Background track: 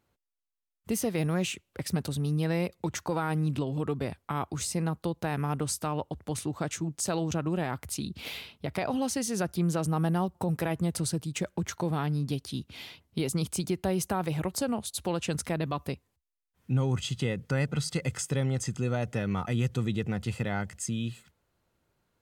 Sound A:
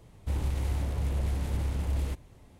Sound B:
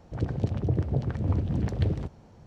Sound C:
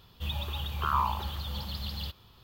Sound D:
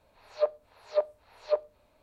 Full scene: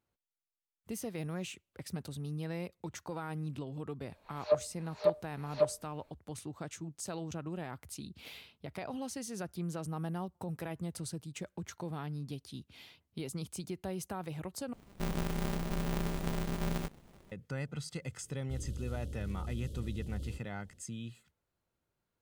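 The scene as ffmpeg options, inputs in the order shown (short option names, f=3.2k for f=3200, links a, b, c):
-filter_complex "[1:a]asplit=2[a][b];[0:a]volume=-10.5dB[c];[a]aeval=exprs='val(0)*sgn(sin(2*PI*100*n/s))':c=same[d];[b]asuperstop=centerf=1300:order=20:qfactor=0.56[e];[c]asplit=2[f][g];[f]atrim=end=14.734[h];[d]atrim=end=2.59,asetpts=PTS-STARTPTS,volume=-5dB[i];[g]atrim=start=17.316[j];[4:a]atrim=end=2.02,asetpts=PTS-STARTPTS,volume=-1.5dB,afade=t=in:d=0.004:c=hsin,afade=t=out:st=2.016:d=0.004:c=hsin,adelay=180369S[k];[e]atrim=end=2.59,asetpts=PTS-STARTPTS,volume=-11dB,afade=t=in:d=0.004:c=hsin,afade=t=out:st=2.586:d=0.004:c=hsin,adelay=18230[l];[h][i]acrossfade=d=0.004:c1=hsin:c2=hsin[m];[m][j]acrossfade=d=0.004:c1=hsin:c2=hsin[n];[n][k][l]amix=inputs=3:normalize=0"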